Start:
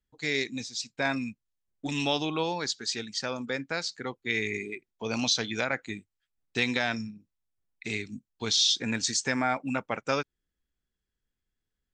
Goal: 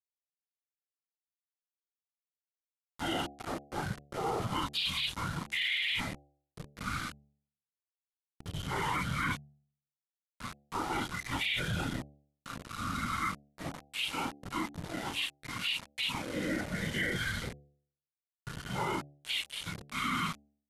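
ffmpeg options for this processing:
-af "areverse,equalizer=f=5400:w=0.96:g=6.5,flanger=delay=16.5:depth=4.6:speed=0.17,afftfilt=real='hypot(re,im)*cos(2*PI*random(0))':imag='hypot(re,im)*sin(2*PI*random(1))':win_size=512:overlap=0.75,aeval=exprs='val(0)*gte(abs(val(0)),0.00794)':c=same,alimiter=level_in=1.5:limit=0.0631:level=0:latency=1:release=13,volume=0.668,asetrate=25442,aresample=44100,equalizer=f=410:w=3.9:g=-3,bandreject=f=2600:w=23,bandreject=f=71.84:t=h:w=4,bandreject=f=143.68:t=h:w=4,bandreject=f=215.52:t=h:w=4,bandreject=f=287.36:t=h:w=4,bandreject=f=359.2:t=h:w=4,bandreject=f=431.04:t=h:w=4,bandreject=f=502.88:t=h:w=4,bandreject=f=574.72:t=h:w=4,bandreject=f=646.56:t=h:w=4,bandreject=f=718.4:t=h:w=4,bandreject=f=790.24:t=h:w=4,volume=1.68"

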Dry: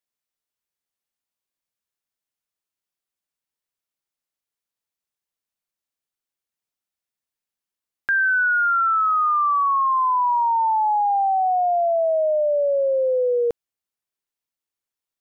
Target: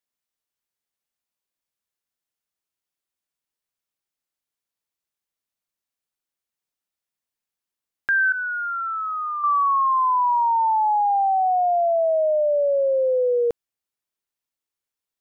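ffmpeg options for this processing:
-filter_complex "[0:a]asettb=1/sr,asplit=3[s0][s1][s2];[s0]atrim=end=8.324[s3];[s1]atrim=start=8.32:end=9.44,asetpts=PTS-STARTPTS,afade=t=in:d=0.004:c=qsin,afade=t=out:st=1.116:d=0.004:c=qsin,agate=range=0.0224:threshold=0.224:ratio=3:detection=peak[s4];[s2]atrim=start=9.436[s5];[s3][s4]acrossfade=d=0.004:c1=hsin:c2=qsin[s6];[s6][s5]acrossfade=d=0.004:c1=qsin:c2=hsin"

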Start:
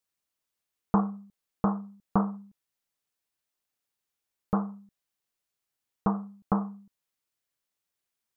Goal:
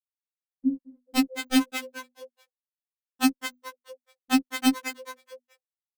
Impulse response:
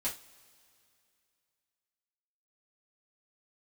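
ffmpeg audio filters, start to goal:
-filter_complex "[0:a]bandreject=f=870:w=12,adynamicsmooth=sensitivity=0.5:basefreq=1200,afftfilt=real='re*gte(hypot(re,im),0.355)':imag='im*gte(hypot(re,im),0.355)':win_size=1024:overlap=0.75,lowshelf=f=120:g=6,aecho=1:1:2.9:0.4,dynaudnorm=f=220:g=11:m=4.22,aeval=exprs='(mod(3.98*val(0)+1,2)-1)/3.98':c=same,bandreject=f=60:t=h:w=6,bandreject=f=120:t=h:w=6,asetrate=61740,aresample=44100,asplit=5[s0][s1][s2][s3][s4];[s1]adelay=215,afreqshift=81,volume=0.447[s5];[s2]adelay=430,afreqshift=162,volume=0.143[s6];[s3]adelay=645,afreqshift=243,volume=0.0457[s7];[s4]adelay=860,afreqshift=324,volume=0.0146[s8];[s0][s5][s6][s7][s8]amix=inputs=5:normalize=0,afftfilt=real='re*3.46*eq(mod(b,12),0)':imag='im*3.46*eq(mod(b,12),0)':win_size=2048:overlap=0.75"

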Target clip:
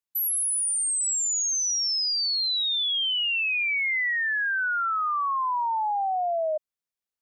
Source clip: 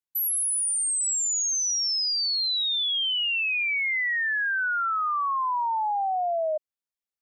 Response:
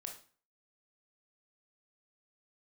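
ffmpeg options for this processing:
-filter_complex "[0:a]asettb=1/sr,asplit=3[s0][s1][s2];[s0]atrim=end=1.524[s3];[s1]atrim=start=1.52:end=4.11,asetpts=PTS-STARTPTS,afade=t=in:d=0.004:c=qsin,afade=t=out:st=2.586:d=0.004:c=qsin,lowshelf=f=500:g=8[s4];[s2]atrim=start=4.106[s5];[s3][s4]acrossfade=d=0.004:c1=hsin:c2=qsin[s6];[s6][s5]acrossfade=d=0.004:c1=qsin:c2=hsin"

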